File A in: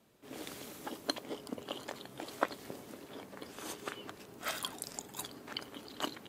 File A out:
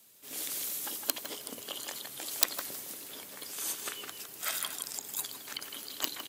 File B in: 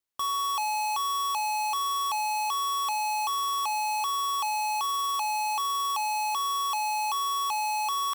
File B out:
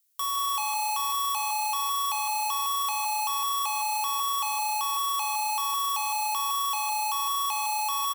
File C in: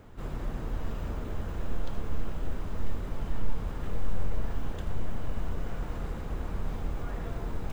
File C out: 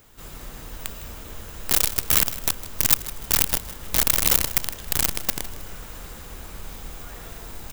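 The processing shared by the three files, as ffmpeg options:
-filter_complex "[0:a]acrossover=split=2500[s0][s1];[s1]acompressor=threshold=0.00562:ratio=4:attack=1:release=60[s2];[s0][s2]amix=inputs=2:normalize=0,highshelf=f=2300:g=4,bandreject=f=60:t=h:w=6,bandreject=f=120:t=h:w=6,bandreject=f=180:t=h:w=6,bandreject=f=240:t=h:w=6,bandreject=f=300:t=h:w=6,bandreject=f=360:t=h:w=6,asplit=2[s3][s4];[s4]adelay=160,highpass=300,lowpass=3400,asoftclip=type=hard:threshold=0.1,volume=0.447[s5];[s3][s5]amix=inputs=2:normalize=0,aeval=exprs='(mod(10*val(0)+1,2)-1)/10':c=same,asplit=2[s6][s7];[s7]asplit=3[s8][s9][s10];[s8]adelay=157,afreqshift=30,volume=0.158[s11];[s9]adelay=314,afreqshift=60,volume=0.0525[s12];[s10]adelay=471,afreqshift=90,volume=0.0172[s13];[s11][s12][s13]amix=inputs=3:normalize=0[s14];[s6][s14]amix=inputs=2:normalize=0,crystalizer=i=7:c=0,volume=0.501"

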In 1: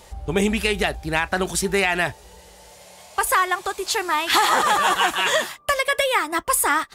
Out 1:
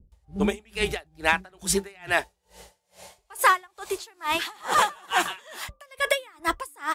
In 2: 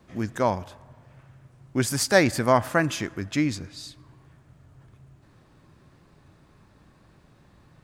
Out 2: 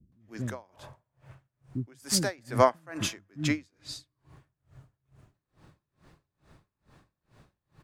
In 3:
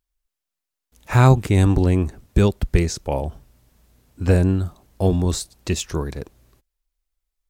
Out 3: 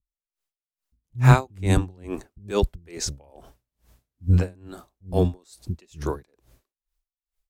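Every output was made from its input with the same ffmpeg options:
-filter_complex "[0:a]acrossover=split=250[s0][s1];[s1]adelay=120[s2];[s0][s2]amix=inputs=2:normalize=0,aeval=exprs='val(0)*pow(10,-33*(0.5-0.5*cos(2*PI*2.3*n/s))/20)':c=same,volume=1.19"

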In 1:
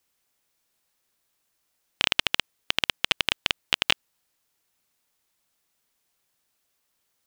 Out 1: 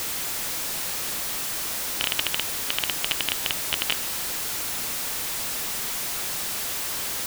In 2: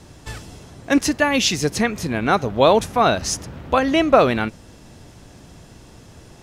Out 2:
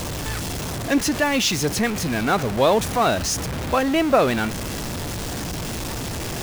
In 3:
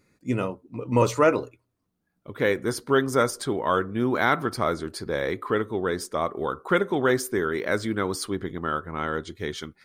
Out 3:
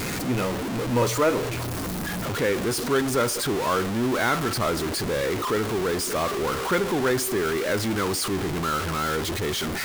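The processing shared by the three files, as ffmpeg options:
-af "aeval=exprs='val(0)+0.5*0.126*sgn(val(0))':c=same,volume=0.562"

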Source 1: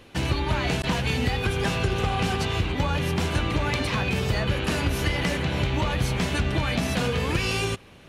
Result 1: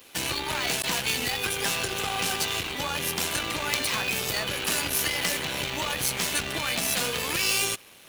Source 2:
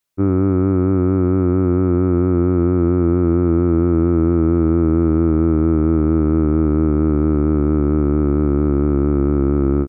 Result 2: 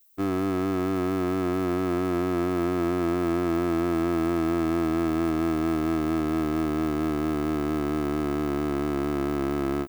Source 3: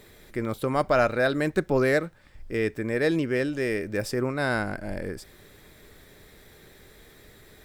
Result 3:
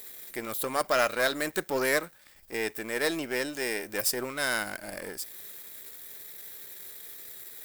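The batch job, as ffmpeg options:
-af "aeval=exprs='if(lt(val(0),0),0.447*val(0),val(0))':c=same,aemphasis=mode=production:type=riaa"

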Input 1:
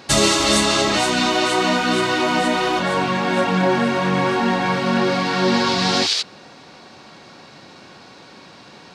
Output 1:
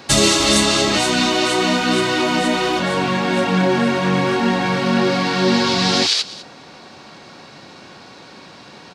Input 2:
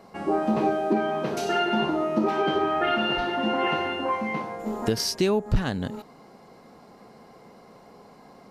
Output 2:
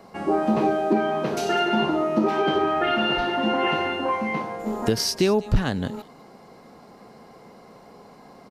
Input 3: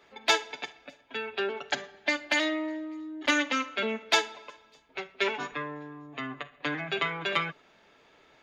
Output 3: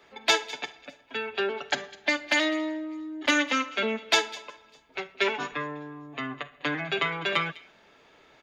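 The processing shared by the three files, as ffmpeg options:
-filter_complex "[0:a]acrossover=split=540|1900[s0][s1][s2];[s1]alimiter=limit=0.0891:level=0:latency=1[s3];[s2]aecho=1:1:202:0.141[s4];[s0][s3][s4]amix=inputs=3:normalize=0,volume=1.33"

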